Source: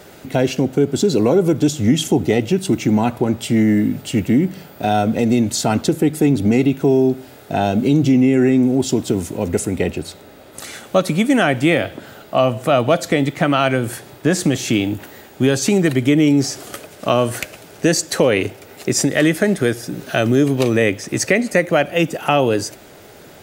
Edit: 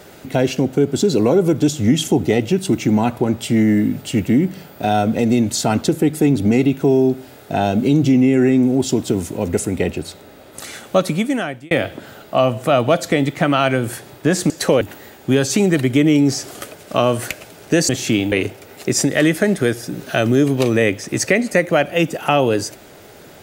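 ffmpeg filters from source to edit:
-filter_complex "[0:a]asplit=6[s0][s1][s2][s3][s4][s5];[s0]atrim=end=11.71,asetpts=PTS-STARTPTS,afade=t=out:st=11.03:d=0.68[s6];[s1]atrim=start=11.71:end=14.502,asetpts=PTS-STARTPTS,afade=t=in:d=0.004:c=hsin[s7];[s2]atrim=start=18.008:end=18.322[s8];[s3]atrim=start=14.928:end=18.012[s9];[s4]atrim=start=14.498:end=14.932[s10];[s5]atrim=start=18.318[s11];[s6][s7]concat=n=2:v=0:a=1[s12];[s12][s8]acrossfade=d=0.004:c1=hsin:c2=hsin[s13];[s13][s9]acrossfade=d=0.004:c1=hsin:c2=hsin[s14];[s14][s10]acrossfade=d=0.004:c1=hsin:c2=hsin[s15];[s15][s11]acrossfade=d=0.004:c1=hsin:c2=hsin"

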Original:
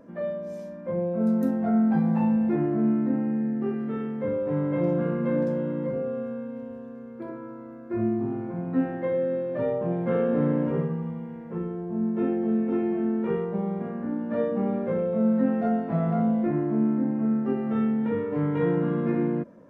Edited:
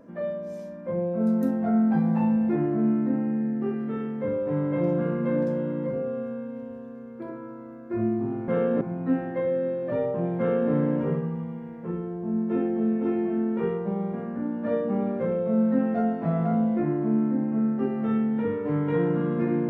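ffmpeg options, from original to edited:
-filter_complex "[0:a]asplit=3[s0][s1][s2];[s0]atrim=end=8.482[s3];[s1]atrim=start=10.058:end=10.392[s4];[s2]atrim=start=8.478[s5];[s3][s4]acrossfade=d=0.004:c1=hsin:c2=hsin[s6];[s6][s5]acrossfade=d=0.004:c1=hsin:c2=hsin"

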